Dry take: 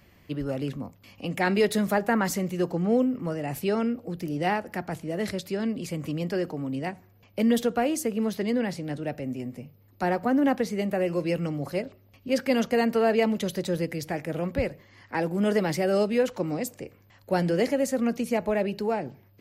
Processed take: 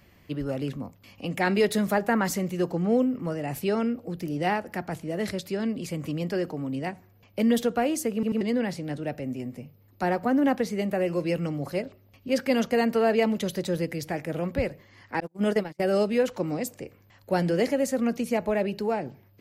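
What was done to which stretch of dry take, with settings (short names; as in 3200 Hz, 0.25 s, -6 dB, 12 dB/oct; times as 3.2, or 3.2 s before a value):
8.14 stutter in place 0.09 s, 3 plays
15.2–15.8 gate -25 dBFS, range -39 dB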